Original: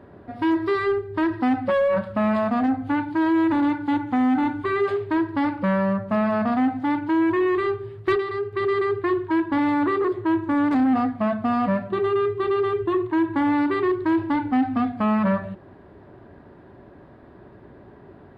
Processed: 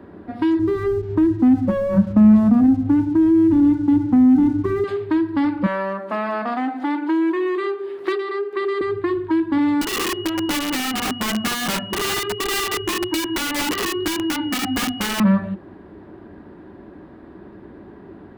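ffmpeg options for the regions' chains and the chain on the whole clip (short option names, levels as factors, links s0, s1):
-filter_complex "[0:a]asettb=1/sr,asplit=3[s0][s1][s2];[s0]atrim=end=0.594[s3];[s1]atrim=start=0.59:end=4.84,asetpts=PTS-STARTPTS,afade=t=in:d=0.004:c=qsin,afade=t=out:st=4.246:d=0.004:c=qsin,lowpass=f=1000:p=1,aeval=exprs='sgn(val(0))*max(abs(val(0))-0.00299,0)':c=same,lowshelf=f=330:g=11.5[s4];[s2]atrim=start=4.836[s5];[s3][s4]acrossfade=d=0.004:c1=hsin:c2=qsin[s6];[s6][s5]acrossfade=d=0.004:c1=qsin:c2=hsin,asettb=1/sr,asplit=3[s7][s8][s9];[s7]atrim=end=5.664[s10];[s8]atrim=start=5.66:end=8.81,asetpts=PTS-STARTPTS,afade=t=in:d=0.004:c=qsin,afade=t=out:st=3.146:d=0.004:c=qsin,highpass=f=330:w=0.5412,highpass=f=330:w=1.3066,acompressor=mode=upward:threshold=0.0447:ratio=2.5:attack=3.2:release=140:knee=2.83:detection=peak[s11];[s9]atrim=start=8.806[s12];[s10][s11]acrossfade=d=0.004:c1=hsin:c2=qsin[s13];[s13][s12]acrossfade=d=0.004:c1=qsin:c2=hsin,asettb=1/sr,asplit=3[s14][s15][s16];[s14]atrim=end=9.814[s17];[s15]atrim=start=9.81:end=15.2,asetpts=PTS-STARTPTS,afade=t=in:d=0.004:c=qsin,afade=t=out:st=5.386:d=0.004:c=qsin,flanger=delay=15:depth=5.2:speed=1.1,aeval=exprs='(mod(12.6*val(0)+1,2)-1)/12.6':c=same,aeval=exprs='val(0)+0.0141*sin(2*PI*2900*n/s)':c=same[s18];[s16]atrim=start=15.196[s19];[s17][s18]acrossfade=d=0.004:c1=hsin:c2=qsin[s20];[s20][s19]acrossfade=d=0.004:c1=qsin:c2=hsin,equalizer=f=125:t=o:w=0.33:g=-8,equalizer=f=200:t=o:w=0.33:g=6,equalizer=f=315:t=o:w=0.33:g=7,equalizer=f=630:t=o:w=0.33:g=-4,acrossover=split=220|3000[s21][s22][s23];[s22]acompressor=threshold=0.0631:ratio=6[s24];[s21][s24][s23]amix=inputs=3:normalize=0,volume=1.5"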